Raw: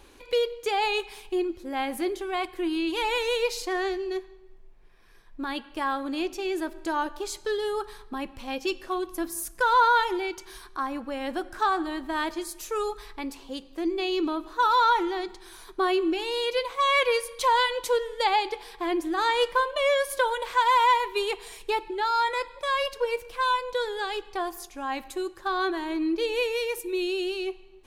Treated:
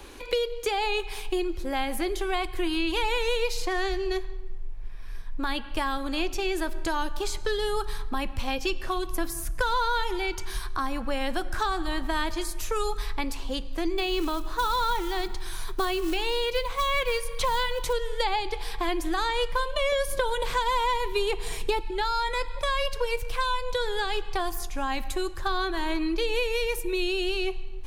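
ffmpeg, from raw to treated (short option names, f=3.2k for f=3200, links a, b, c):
-filter_complex "[0:a]asettb=1/sr,asplit=3[a][b][c];[a]atrim=end=13.984[d];[b]atrim=start=13.98:end=17.93,asetpts=PTS-STARTPTS,afade=t=in:d=0.004:c=qsin,afade=t=out:st=3.946:d=0.004:c=qsin,acrusher=bits=6:mode=log:mix=0:aa=0.000001[e];[c]atrim=start=17.926[f];[d][e]acrossfade=d=0.004:c1=hsin:c2=qsin[g];[g][f]acrossfade=d=0.004:c1=qsin:c2=hsin,asettb=1/sr,asplit=3[h][i][j];[h]atrim=end=19.924[k];[i]atrim=start=19.92:end=21.81,asetpts=PTS-STARTPTS,afade=t=in:d=0.004:c=qsin,afade=t=out:st=1.886:d=0.004:c=qsin,equalizer=f=260:w=0.61:g=9.5[l];[j]atrim=start=21.806[m];[k][l]acrossfade=d=0.004:c1=hsin:c2=qsin[n];[n][m]acrossfade=d=0.004:c1=qsin:c2=hsin,asubboost=boost=7.5:cutoff=110,acrossover=split=81|360|2900[o][p][q][r];[o]acompressor=threshold=-36dB:ratio=4[s];[p]acompressor=threshold=-45dB:ratio=4[t];[q]acompressor=threshold=-37dB:ratio=4[u];[r]acompressor=threshold=-44dB:ratio=4[v];[s][t][u][v]amix=inputs=4:normalize=0,volume=8dB"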